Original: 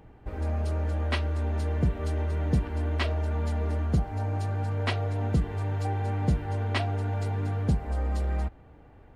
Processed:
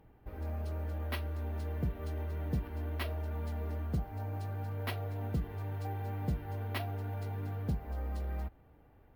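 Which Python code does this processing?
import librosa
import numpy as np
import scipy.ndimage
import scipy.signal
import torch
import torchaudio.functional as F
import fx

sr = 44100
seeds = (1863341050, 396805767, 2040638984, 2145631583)

y = np.repeat(scipy.signal.resample_poly(x, 1, 3), 3)[:len(x)]
y = y * librosa.db_to_amplitude(-9.0)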